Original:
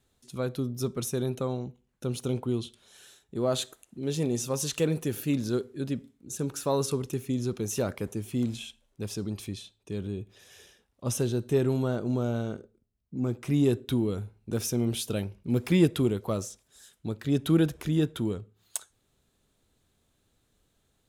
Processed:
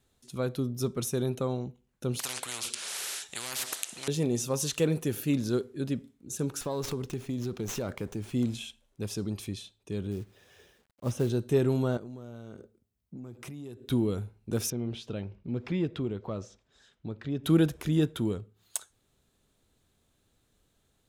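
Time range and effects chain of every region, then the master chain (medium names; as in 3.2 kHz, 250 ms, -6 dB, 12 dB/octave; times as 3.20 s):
2.19–4.08 s: frequency weighting ITU-R 468 + spectrum-flattening compressor 10:1
6.61–8.33 s: compression 4:1, threshold -29 dBFS + sliding maximum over 3 samples
10.11–11.30 s: low-pass 1.7 kHz 6 dB/octave + companded quantiser 6-bit
11.97–13.90 s: high-pass 50 Hz 24 dB/octave + treble shelf 9.6 kHz +4.5 dB + compression 8:1, threshold -39 dBFS
14.70–17.44 s: compression 1.5:1, threshold -39 dBFS + distance through air 170 m
whole clip: none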